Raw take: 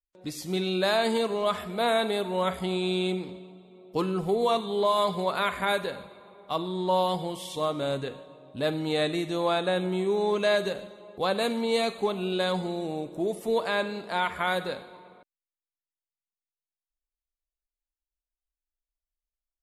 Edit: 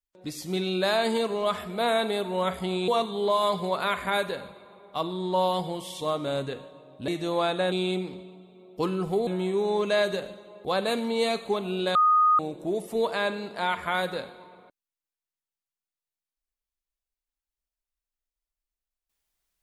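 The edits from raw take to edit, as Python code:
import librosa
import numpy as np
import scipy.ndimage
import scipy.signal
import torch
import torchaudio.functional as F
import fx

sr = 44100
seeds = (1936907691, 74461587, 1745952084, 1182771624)

y = fx.edit(x, sr, fx.move(start_s=2.88, length_s=1.55, to_s=9.8),
    fx.cut(start_s=8.63, length_s=0.53),
    fx.bleep(start_s=12.48, length_s=0.44, hz=1240.0, db=-16.5), tone=tone)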